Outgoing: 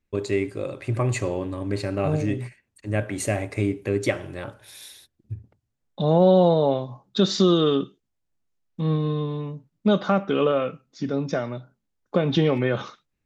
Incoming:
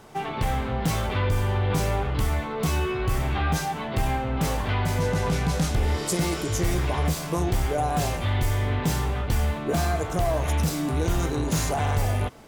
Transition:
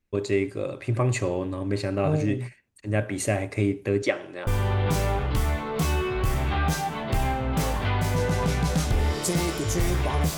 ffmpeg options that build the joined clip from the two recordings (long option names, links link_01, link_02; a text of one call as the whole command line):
ffmpeg -i cue0.wav -i cue1.wav -filter_complex "[0:a]asettb=1/sr,asplit=3[link_01][link_02][link_03];[link_01]atrim=end=4.024[link_04];[link_02]atrim=start=4.02:end=4.47,asetpts=PTS-STARTPTS,afade=type=in:duration=0.004:curve=qsin,afade=type=out:start_time=0.446:duration=0.004:curve=qsin,highpass=280,lowpass=6900[link_05];[link_03]atrim=start=4.466[link_06];[link_04][link_05]acrossfade=duration=0.004:curve1=hsin:curve2=qsin[link_07];[link_07][link_06]acrossfade=duration=0.004:curve1=qsin:curve2=hsin,apad=whole_dur=10.37,atrim=end=10.37,atrim=end=4.472[link_08];[1:a]atrim=start=1.308:end=7.21[link_09];[link_08][link_09]acrossfade=duration=0.004:curve1=hsin:curve2=hsin" out.wav